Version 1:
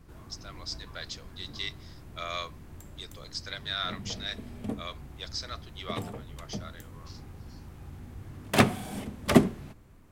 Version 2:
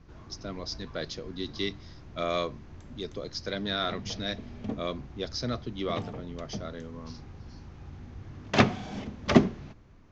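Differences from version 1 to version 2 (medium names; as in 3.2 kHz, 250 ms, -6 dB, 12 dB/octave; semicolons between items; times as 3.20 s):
speech: remove high-pass 1.1 kHz 12 dB/octave; master: add steep low-pass 6.6 kHz 72 dB/octave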